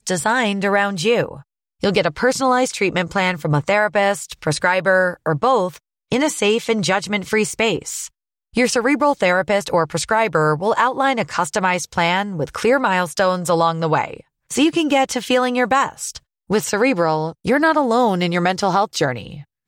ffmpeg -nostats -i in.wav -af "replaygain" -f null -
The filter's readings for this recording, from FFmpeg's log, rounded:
track_gain = -0.9 dB
track_peak = 0.496